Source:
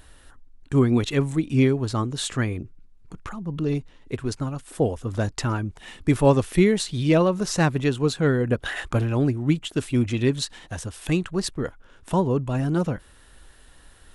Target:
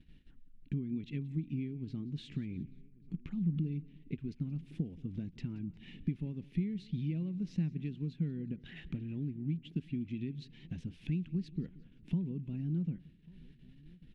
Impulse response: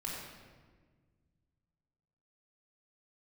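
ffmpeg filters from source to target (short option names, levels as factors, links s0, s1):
-filter_complex "[0:a]acompressor=threshold=0.0282:ratio=16,asplit=2[s0][s1];[s1]aecho=0:1:178|356|534:0.0891|0.0419|0.0197[s2];[s0][s2]amix=inputs=2:normalize=0,agate=range=0.224:threshold=0.00355:ratio=16:detection=peak,firequalizer=gain_entry='entry(120,0);entry(160,13);entry(550,-16);entry(1200,-22);entry(2300,-1);entry(8100,-28)':delay=0.05:min_phase=1,asplit=2[s3][s4];[s4]adelay=1142,lowpass=f=2400:p=1,volume=0.0708,asplit=2[s5][s6];[s6]adelay=1142,lowpass=f=2400:p=1,volume=0.5,asplit=2[s7][s8];[s8]adelay=1142,lowpass=f=2400:p=1,volume=0.5[s9];[s5][s7][s9]amix=inputs=3:normalize=0[s10];[s3][s10]amix=inputs=2:normalize=0,volume=0.422"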